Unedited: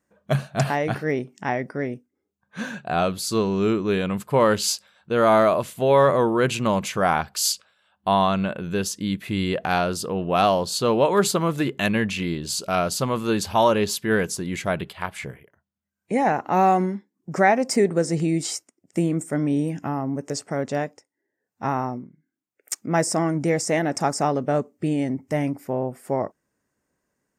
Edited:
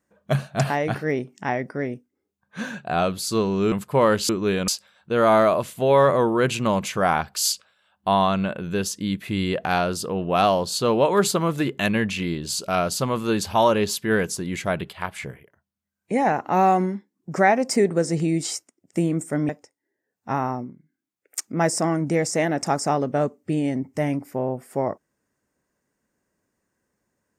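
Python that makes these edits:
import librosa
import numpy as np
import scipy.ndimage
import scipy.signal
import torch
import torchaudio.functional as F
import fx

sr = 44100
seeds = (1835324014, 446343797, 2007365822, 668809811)

y = fx.edit(x, sr, fx.move(start_s=3.72, length_s=0.39, to_s=4.68),
    fx.cut(start_s=19.49, length_s=1.34), tone=tone)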